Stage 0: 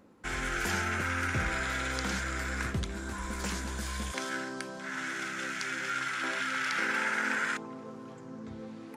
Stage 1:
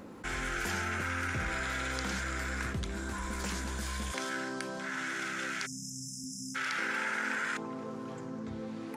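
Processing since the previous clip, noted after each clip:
time-frequency box erased 0:05.66–0:06.55, 260–5,000 Hz
envelope flattener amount 50%
level −4.5 dB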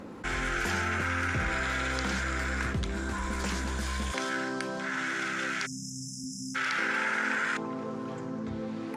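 high-shelf EQ 9,400 Hz −11 dB
level +4.5 dB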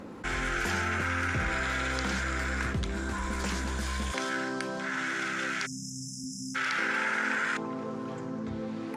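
no processing that can be heard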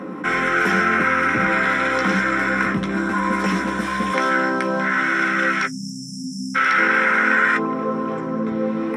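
convolution reverb, pre-delay 3 ms, DRR 3 dB
level +2.5 dB

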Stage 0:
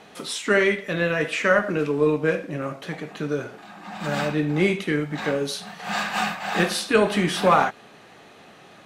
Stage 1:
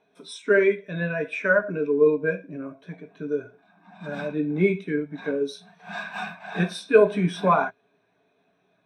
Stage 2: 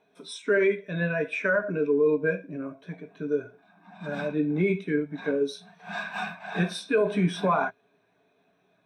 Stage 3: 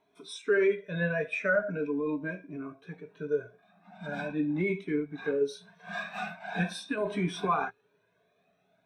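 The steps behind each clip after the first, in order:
EQ curve with evenly spaced ripples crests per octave 1.6, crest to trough 8 dB; every bin expanded away from the loudest bin 1.5 to 1
brickwall limiter −14.5 dBFS, peak gain reduction 10 dB
flanger whose copies keep moving one way rising 0.42 Hz; level +1 dB

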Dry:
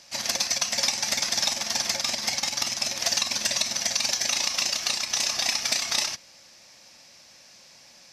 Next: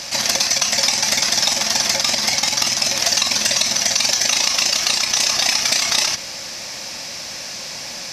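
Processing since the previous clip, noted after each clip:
envelope flattener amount 50%
level +6.5 dB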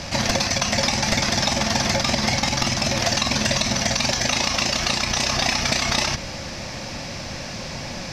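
RIAA equalisation playback
in parallel at −11 dB: soft clipping −16.5 dBFS, distortion −15 dB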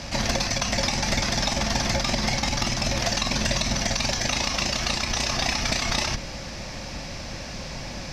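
sub-octave generator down 2 octaves, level 0 dB
level −4 dB

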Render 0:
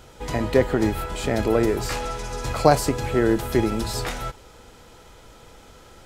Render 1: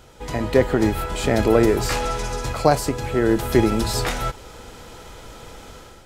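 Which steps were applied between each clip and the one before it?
automatic gain control gain up to 8.5 dB
level −1 dB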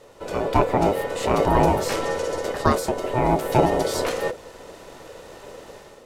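sub-octave generator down 1 octave, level +3 dB
ring modulation 500 Hz
level −1 dB

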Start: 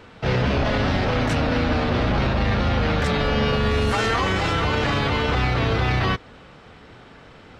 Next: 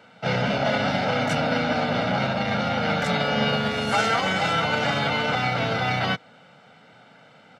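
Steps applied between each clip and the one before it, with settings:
high-pass filter 150 Hz 24 dB per octave
comb filter 1.4 ms, depth 65%
expander for the loud parts 1.5 to 1, over −31 dBFS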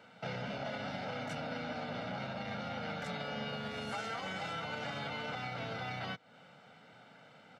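downward compressor 3 to 1, threshold −34 dBFS, peak gain reduction 12.5 dB
level −6.5 dB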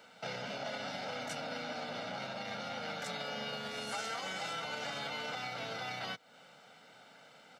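high-pass filter 98 Hz
bass and treble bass −7 dB, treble +10 dB

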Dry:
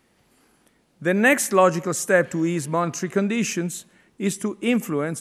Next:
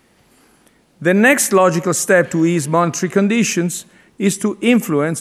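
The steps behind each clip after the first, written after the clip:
boost into a limiter +9 dB
level −1 dB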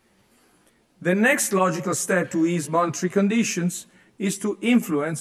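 multi-voice chorus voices 4, 0.65 Hz, delay 13 ms, depth 4 ms
level −4 dB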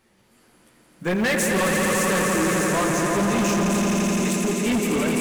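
one scale factor per block 7 bits
echo that builds up and dies away 85 ms, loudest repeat 5, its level −6 dB
hard clipping −18.5 dBFS, distortion −8 dB

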